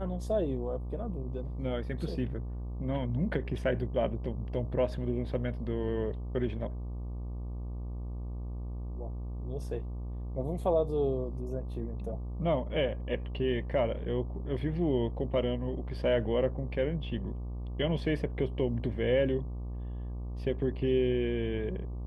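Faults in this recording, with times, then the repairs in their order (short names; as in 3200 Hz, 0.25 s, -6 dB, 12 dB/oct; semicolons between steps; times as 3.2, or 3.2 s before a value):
buzz 60 Hz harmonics 20 -37 dBFS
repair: de-hum 60 Hz, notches 20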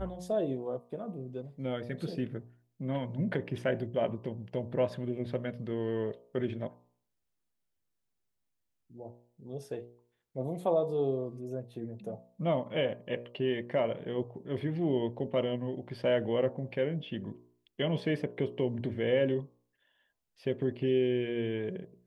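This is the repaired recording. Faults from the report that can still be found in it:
none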